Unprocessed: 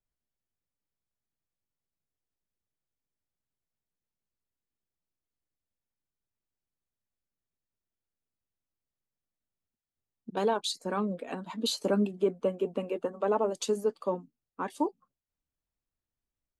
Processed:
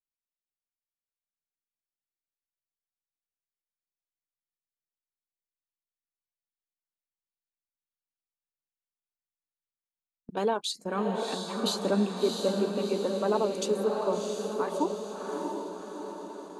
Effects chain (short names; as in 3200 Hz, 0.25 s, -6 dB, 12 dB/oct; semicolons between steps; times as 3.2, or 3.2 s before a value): diffused feedback echo 0.684 s, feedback 57%, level -3.5 dB; gate with hold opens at -33 dBFS